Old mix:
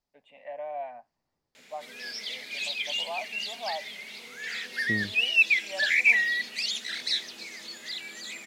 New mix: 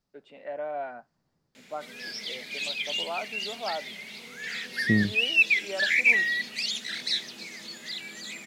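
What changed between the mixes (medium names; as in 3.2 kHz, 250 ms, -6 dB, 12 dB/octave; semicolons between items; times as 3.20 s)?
first voice: remove static phaser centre 1.4 kHz, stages 6; second voice +4.0 dB; master: add peaking EQ 160 Hz +9 dB 1.3 oct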